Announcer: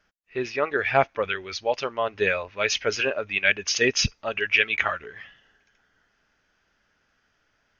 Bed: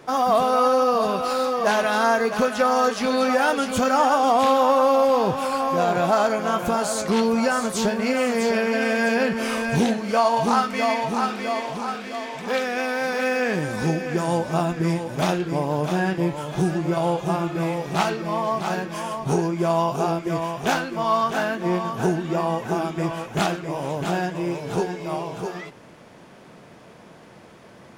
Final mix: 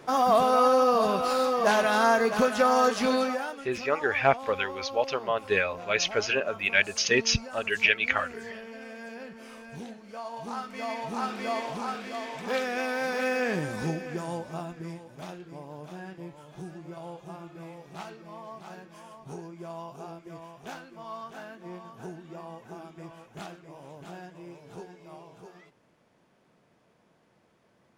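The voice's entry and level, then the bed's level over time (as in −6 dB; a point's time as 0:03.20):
3.30 s, −2.0 dB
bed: 0:03.13 −2.5 dB
0:03.64 −21 dB
0:10.12 −21 dB
0:11.48 −5 dB
0:13.57 −5 dB
0:15.17 −19 dB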